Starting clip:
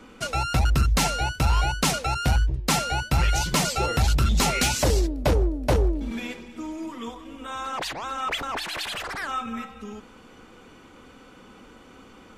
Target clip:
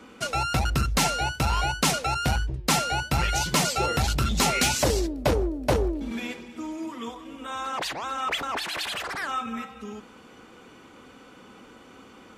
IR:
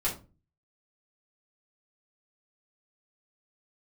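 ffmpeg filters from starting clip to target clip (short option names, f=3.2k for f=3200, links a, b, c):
-filter_complex "[0:a]highpass=f=110:p=1,asplit=2[a][b];[1:a]atrim=start_sample=2205[c];[b][c]afir=irnorm=-1:irlink=0,volume=-27dB[d];[a][d]amix=inputs=2:normalize=0"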